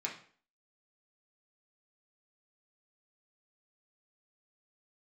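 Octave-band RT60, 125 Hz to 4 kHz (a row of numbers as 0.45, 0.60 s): 0.40, 0.50, 0.50, 0.45, 0.45, 0.40 s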